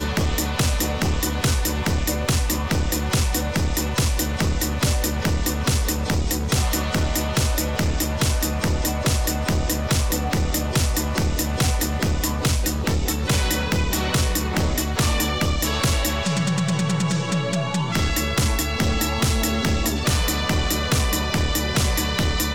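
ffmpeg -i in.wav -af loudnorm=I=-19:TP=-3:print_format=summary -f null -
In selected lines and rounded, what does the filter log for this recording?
Input Integrated:    -22.0 LUFS
Input True Peak:     -12.8 dBTP
Input LRA:             0.9 LU
Input Threshold:     -32.0 LUFS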